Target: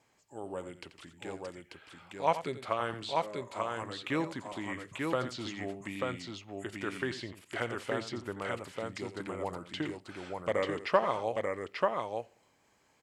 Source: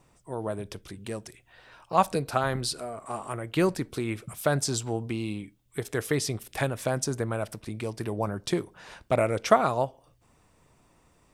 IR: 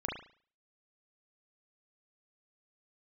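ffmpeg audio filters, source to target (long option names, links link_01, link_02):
-filter_complex "[0:a]asetrate=38367,aresample=44100,acrossover=split=3800[link_01][link_02];[link_02]acompressor=threshold=-52dB:ratio=6[link_03];[link_01][link_03]amix=inputs=2:normalize=0,highpass=frequency=290:poles=1,equalizer=frequency=2400:width_type=o:width=1.6:gain=5,aecho=1:1:86|889:0.237|0.708,volume=-6.5dB"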